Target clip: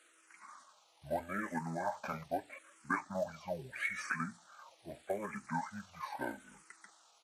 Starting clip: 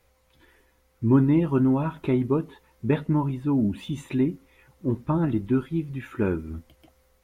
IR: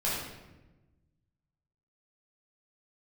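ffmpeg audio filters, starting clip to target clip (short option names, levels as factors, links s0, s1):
-filter_complex "[0:a]highpass=1400,asplit=2[s0][s1];[s1]alimiter=level_in=2.51:limit=0.0631:level=0:latency=1:release=394,volume=0.398,volume=0.794[s2];[s0][s2]amix=inputs=2:normalize=0,acrusher=bits=6:mode=log:mix=0:aa=0.000001,asetrate=27781,aresample=44100,atempo=1.5874,asplit=2[s3][s4];[s4]afreqshift=-0.79[s5];[s3][s5]amix=inputs=2:normalize=1,volume=1.58"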